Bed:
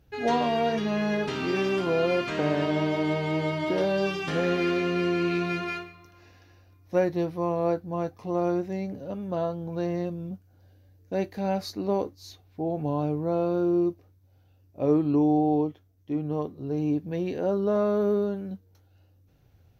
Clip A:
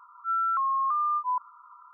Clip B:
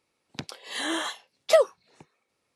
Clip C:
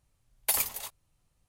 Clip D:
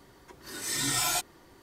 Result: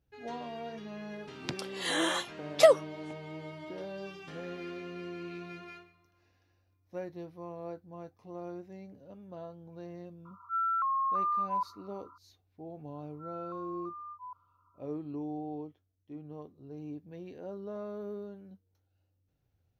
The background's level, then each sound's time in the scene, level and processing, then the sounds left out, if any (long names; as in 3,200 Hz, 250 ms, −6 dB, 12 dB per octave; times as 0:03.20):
bed −16 dB
0:01.10: mix in B −1 dB
0:10.25: mix in A −4 dB
0:12.95: mix in A −16.5 dB + low-pass filter 1,400 Hz
not used: C, D